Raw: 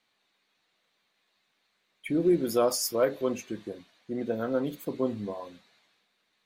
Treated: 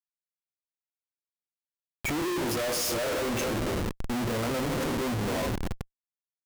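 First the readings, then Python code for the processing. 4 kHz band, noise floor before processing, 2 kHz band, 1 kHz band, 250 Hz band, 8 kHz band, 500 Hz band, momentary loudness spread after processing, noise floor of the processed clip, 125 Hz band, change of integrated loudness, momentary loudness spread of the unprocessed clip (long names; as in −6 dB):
+5.5 dB, −75 dBFS, +9.5 dB, +4.0 dB, −1.0 dB, +2.5 dB, −2.5 dB, 8 LU, below −85 dBFS, +7.5 dB, −0.5 dB, 17 LU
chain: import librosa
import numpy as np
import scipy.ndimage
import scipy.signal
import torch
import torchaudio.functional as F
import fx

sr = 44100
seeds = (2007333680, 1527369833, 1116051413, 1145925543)

y = fx.rev_double_slope(x, sr, seeds[0], early_s=0.24, late_s=2.6, knee_db=-18, drr_db=-0.5)
y = fx.schmitt(y, sr, flips_db=-39.5)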